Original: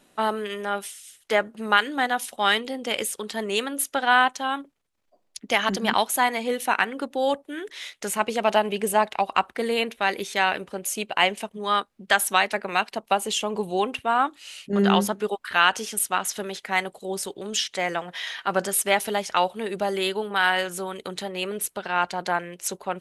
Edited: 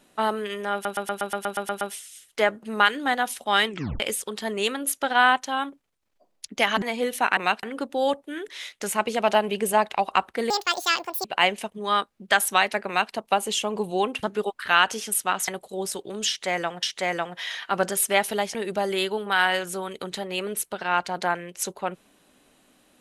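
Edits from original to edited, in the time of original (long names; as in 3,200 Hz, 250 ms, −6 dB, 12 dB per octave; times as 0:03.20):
0:00.73: stutter 0.12 s, 10 plays
0:02.59: tape stop 0.33 s
0:05.74–0:06.29: remove
0:09.71–0:11.04: play speed 178%
0:12.66–0:12.92: duplicate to 0:06.84
0:14.02–0:15.08: remove
0:16.33–0:16.79: remove
0:17.59–0:18.14: repeat, 2 plays
0:19.31–0:19.59: remove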